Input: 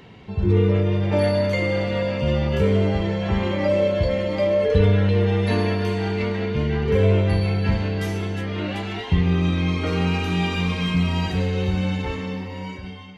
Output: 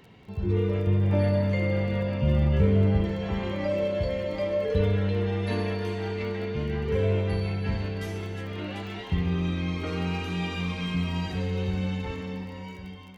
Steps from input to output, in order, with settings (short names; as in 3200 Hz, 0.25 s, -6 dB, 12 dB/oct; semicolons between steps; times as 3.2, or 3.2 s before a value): 0.87–3.05 tone controls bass +8 dB, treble -8 dB; crackle 21/s -34 dBFS; reverb RT60 2.6 s, pre-delay 52 ms, DRR 12 dB; gain -7.5 dB